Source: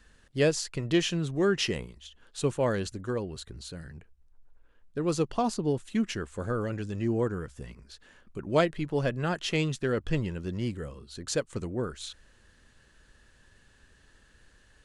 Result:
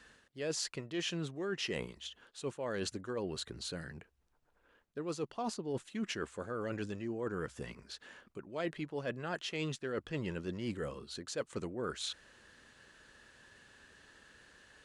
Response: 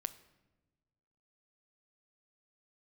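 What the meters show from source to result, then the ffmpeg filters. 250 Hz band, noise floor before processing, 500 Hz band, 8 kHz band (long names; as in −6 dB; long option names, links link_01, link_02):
−10.0 dB, −62 dBFS, −9.5 dB, −6.0 dB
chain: -af "highpass=frequency=300:poles=1,highshelf=frequency=7500:gain=-7,areverse,acompressor=threshold=-38dB:ratio=16,areverse,volume=4dB"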